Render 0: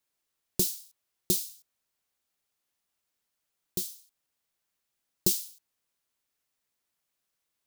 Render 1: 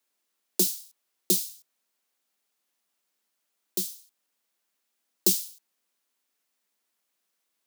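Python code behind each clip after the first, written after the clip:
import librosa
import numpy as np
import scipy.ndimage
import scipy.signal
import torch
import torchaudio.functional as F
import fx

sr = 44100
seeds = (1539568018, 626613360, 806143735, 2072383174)

y = scipy.signal.sosfilt(scipy.signal.butter(16, 180.0, 'highpass', fs=sr, output='sos'), x)
y = y * 10.0 ** (3.5 / 20.0)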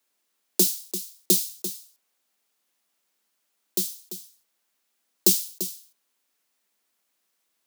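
y = x + 10.0 ** (-11.5 / 20.0) * np.pad(x, (int(342 * sr / 1000.0), 0))[:len(x)]
y = y * 10.0 ** (3.5 / 20.0)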